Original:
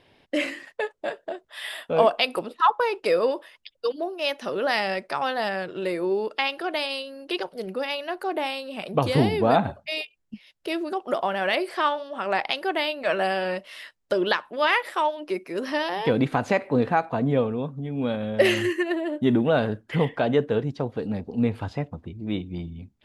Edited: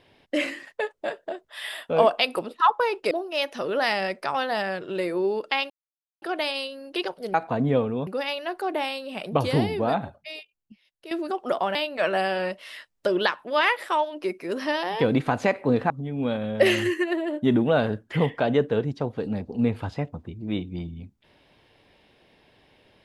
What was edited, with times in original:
3.11–3.98 cut
6.57 insert silence 0.52 s
8.91–10.73 fade out quadratic, to -12.5 dB
11.37–12.81 cut
16.96–17.69 move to 7.69

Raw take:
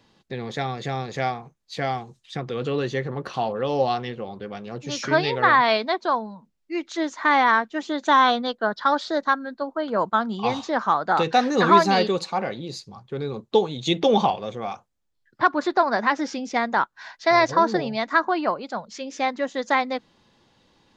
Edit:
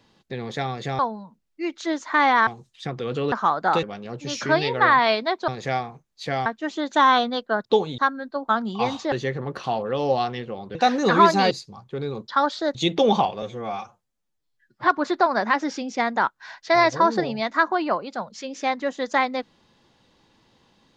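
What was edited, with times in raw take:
0.99–1.97 swap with 6.1–7.58
2.82–4.45 swap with 10.76–11.27
8.77–9.24 swap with 13.47–13.8
9.74–10.12 cut
12.03–12.7 cut
14.47–15.44 stretch 1.5×

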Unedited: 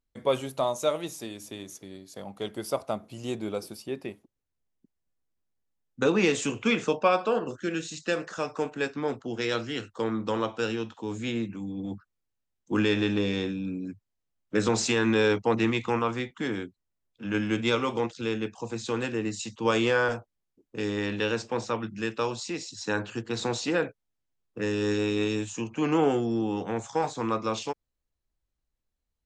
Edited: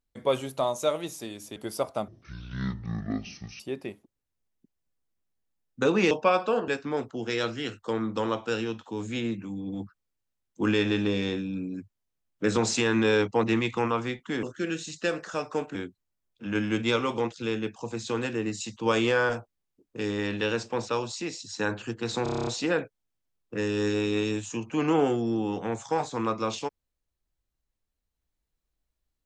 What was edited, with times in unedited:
1.56–2.49 cut
3.01–3.8 speed 52%
6.31–6.9 cut
7.47–8.79 move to 16.54
21.68–22.17 cut
23.51 stutter 0.03 s, 9 plays

